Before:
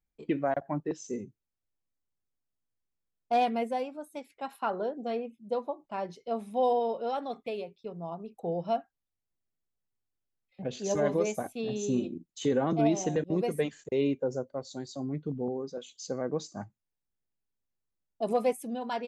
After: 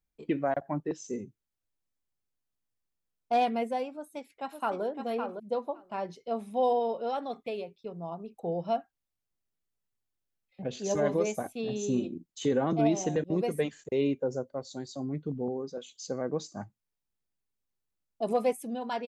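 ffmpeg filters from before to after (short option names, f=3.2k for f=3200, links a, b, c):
-filter_complex "[0:a]asplit=2[a][b];[b]afade=t=in:st=3.96:d=0.01,afade=t=out:st=4.83:d=0.01,aecho=0:1:560|1120:0.501187|0.0501187[c];[a][c]amix=inputs=2:normalize=0"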